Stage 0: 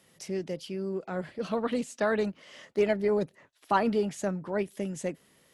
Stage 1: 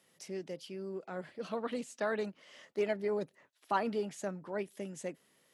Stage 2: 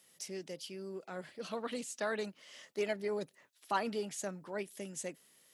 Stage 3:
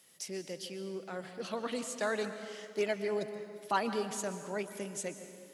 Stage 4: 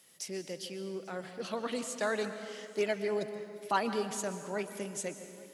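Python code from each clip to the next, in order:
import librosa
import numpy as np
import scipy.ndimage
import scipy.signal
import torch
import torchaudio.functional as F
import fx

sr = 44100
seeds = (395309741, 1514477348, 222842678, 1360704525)

y1 = fx.highpass(x, sr, hz=230.0, slope=6)
y1 = y1 * librosa.db_to_amplitude(-6.0)
y2 = fx.high_shelf(y1, sr, hz=3000.0, db=11.5)
y2 = y2 * librosa.db_to_amplitude(-3.0)
y3 = fx.rev_plate(y2, sr, seeds[0], rt60_s=2.2, hf_ratio=0.65, predelay_ms=110, drr_db=9.0)
y3 = y3 * librosa.db_to_amplitude(2.5)
y4 = y3 + 10.0 ** (-23.5 / 20.0) * np.pad(y3, (int(840 * sr / 1000.0), 0))[:len(y3)]
y4 = y4 * librosa.db_to_amplitude(1.0)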